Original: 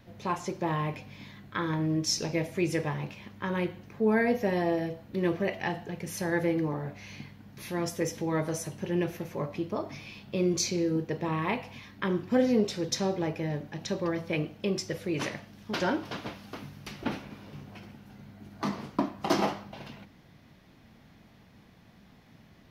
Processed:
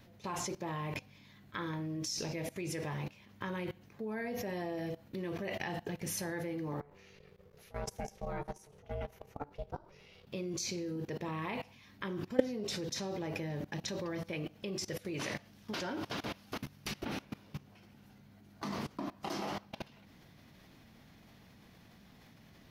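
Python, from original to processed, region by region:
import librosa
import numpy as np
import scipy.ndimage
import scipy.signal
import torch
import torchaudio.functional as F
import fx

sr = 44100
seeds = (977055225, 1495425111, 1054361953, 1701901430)

y = fx.chain(x, sr, fx.high_shelf(hz=2400.0, db=-6.5),
    fx.level_steps(step_db=10),
    fx.ring_mod(carrier_hz=290.0), at=(6.8, 10.27))
y = fx.high_shelf(y, sr, hz=3800.0, db=6.0)
y = fx.level_steps(y, sr, step_db=21)
y = y * 10.0 ** (4.0 / 20.0)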